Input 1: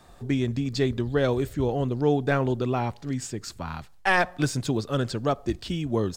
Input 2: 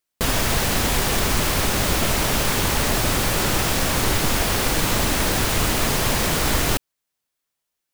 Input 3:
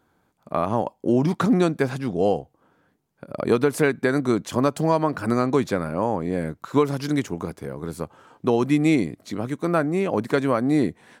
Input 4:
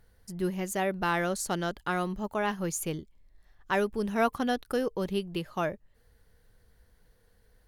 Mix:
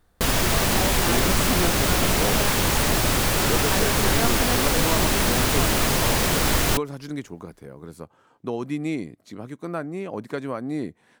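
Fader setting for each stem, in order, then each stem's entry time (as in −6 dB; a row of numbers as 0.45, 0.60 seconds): −16.5, −0.5, −8.5, −2.5 decibels; 0.00, 0.00, 0.00, 0.00 seconds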